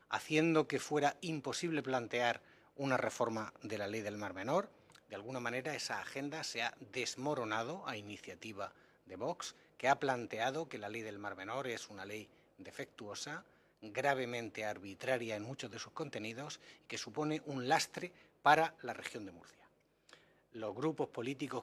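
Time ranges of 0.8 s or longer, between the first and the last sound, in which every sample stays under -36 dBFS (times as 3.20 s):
19.18–20.62 s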